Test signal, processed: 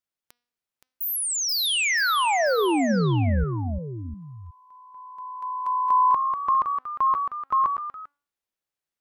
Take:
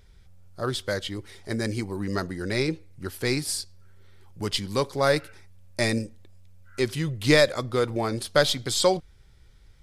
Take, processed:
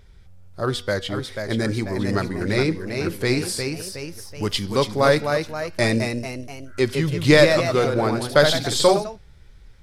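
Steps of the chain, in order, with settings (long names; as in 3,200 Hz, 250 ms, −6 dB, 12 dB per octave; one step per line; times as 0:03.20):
high-shelf EQ 4,100 Hz −5.5 dB
hum removal 241.5 Hz, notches 24
delay with pitch and tempo change per echo 538 ms, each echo +1 semitone, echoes 3, each echo −6 dB
level +5 dB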